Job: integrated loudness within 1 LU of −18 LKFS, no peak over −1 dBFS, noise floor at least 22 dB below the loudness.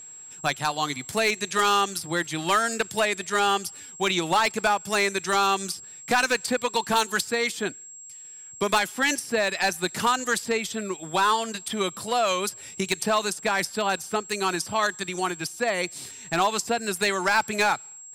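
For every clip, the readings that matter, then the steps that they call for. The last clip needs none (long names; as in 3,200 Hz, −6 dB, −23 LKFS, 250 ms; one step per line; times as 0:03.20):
share of clipped samples 0.4%; peaks flattened at −14.5 dBFS; interfering tone 7,600 Hz; level of the tone −41 dBFS; integrated loudness −25.0 LKFS; sample peak −14.5 dBFS; target loudness −18.0 LKFS
→ clipped peaks rebuilt −14.5 dBFS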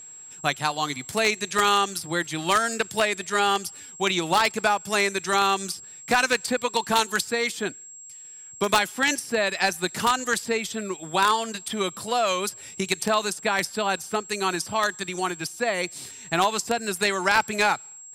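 share of clipped samples 0.0%; interfering tone 7,600 Hz; level of the tone −41 dBFS
→ notch filter 7,600 Hz, Q 30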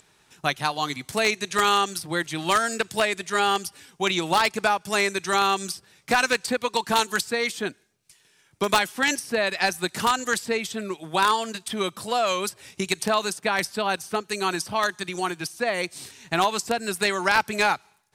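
interfering tone none found; integrated loudness −24.5 LKFS; sample peak −5.5 dBFS; target loudness −18.0 LKFS
→ level +6.5 dB
brickwall limiter −1 dBFS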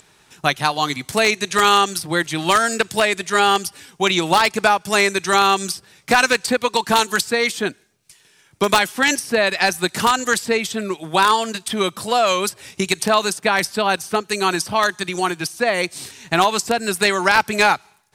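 integrated loudness −18.5 LKFS; sample peak −1.0 dBFS; background noise floor −55 dBFS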